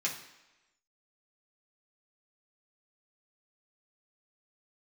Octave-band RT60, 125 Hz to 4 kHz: 0.75 s, 0.95 s, 1.0 s, 1.0 s, 1.1 s, 0.95 s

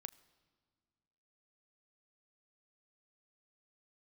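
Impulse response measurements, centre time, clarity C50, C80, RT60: 4 ms, 20.0 dB, 20.5 dB, 1.8 s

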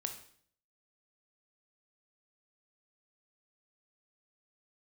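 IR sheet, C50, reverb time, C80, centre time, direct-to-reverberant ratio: 9.0 dB, 0.55 s, 12.5 dB, 15 ms, 5.0 dB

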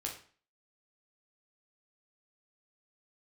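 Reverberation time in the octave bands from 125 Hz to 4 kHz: 0.45 s, 0.45 s, 0.40 s, 0.45 s, 0.45 s, 0.40 s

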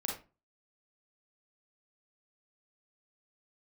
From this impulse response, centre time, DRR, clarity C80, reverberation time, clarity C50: 33 ms, -1.5 dB, 11.5 dB, 0.30 s, 2.5 dB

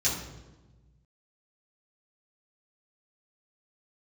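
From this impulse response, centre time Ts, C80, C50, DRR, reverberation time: 47 ms, 6.5 dB, 3.5 dB, -9.0 dB, 1.2 s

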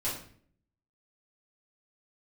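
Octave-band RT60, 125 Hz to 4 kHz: 0.80 s, 0.75 s, 0.60 s, 0.45 s, 0.50 s, 0.45 s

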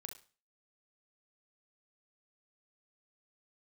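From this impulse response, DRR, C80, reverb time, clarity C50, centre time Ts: 5.0 dB, 16.0 dB, 0.35 s, 9.5 dB, 14 ms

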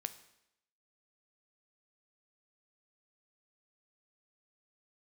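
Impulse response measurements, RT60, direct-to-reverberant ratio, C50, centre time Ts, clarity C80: 0.80 s, 10.0 dB, 14.0 dB, 6 ms, 16.5 dB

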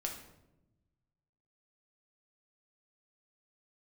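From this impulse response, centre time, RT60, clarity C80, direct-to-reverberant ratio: 28 ms, 0.95 s, 9.5 dB, 0.5 dB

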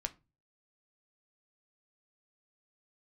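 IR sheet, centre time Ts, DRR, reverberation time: 4 ms, 7.5 dB, 0.30 s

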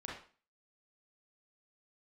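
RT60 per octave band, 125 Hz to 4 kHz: 0.35 s, 0.45 s, 0.40 s, 0.40 s, 0.40 s, 0.40 s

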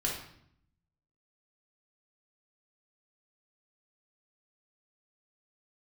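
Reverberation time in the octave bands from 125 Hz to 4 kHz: 1.1 s, 0.95 s, 0.70 s, 0.65 s, 0.60 s, 0.55 s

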